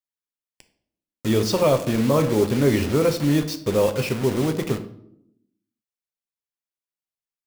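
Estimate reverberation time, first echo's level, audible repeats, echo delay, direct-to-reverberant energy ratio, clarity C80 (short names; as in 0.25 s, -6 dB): 0.70 s, none, none, none, 7.0 dB, 15.5 dB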